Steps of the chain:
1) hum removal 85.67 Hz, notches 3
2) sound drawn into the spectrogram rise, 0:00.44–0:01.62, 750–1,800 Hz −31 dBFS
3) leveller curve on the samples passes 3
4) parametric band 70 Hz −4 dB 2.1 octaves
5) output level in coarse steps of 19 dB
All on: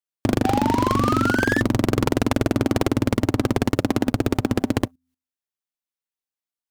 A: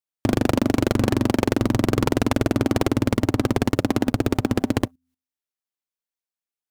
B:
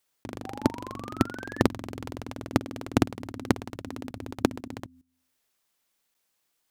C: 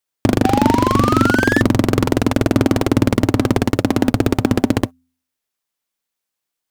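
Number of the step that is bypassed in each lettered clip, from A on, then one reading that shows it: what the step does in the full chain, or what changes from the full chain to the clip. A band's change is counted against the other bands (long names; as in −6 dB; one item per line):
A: 2, 2 kHz band −4.5 dB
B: 3, change in crest factor +10.5 dB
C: 5, change in crest factor −3.5 dB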